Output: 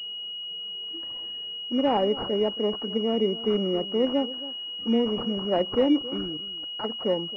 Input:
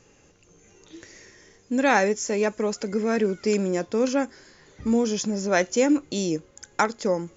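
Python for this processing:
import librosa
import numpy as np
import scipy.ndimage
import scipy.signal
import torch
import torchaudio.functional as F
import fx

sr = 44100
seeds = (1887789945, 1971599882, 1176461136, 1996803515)

y = scipy.signal.sosfilt(scipy.signal.butter(2, 180.0, 'highpass', fs=sr, output='sos'), x)
y = fx.level_steps(y, sr, step_db=15, at=(6.16, 6.83), fade=0.02)
y = fx.env_flanger(y, sr, rest_ms=5.0, full_db=-22.0)
y = y + 10.0 ** (-16.5 / 20.0) * np.pad(y, (int(272 * sr / 1000.0), 0))[:len(y)]
y = fx.pwm(y, sr, carrier_hz=2900.0)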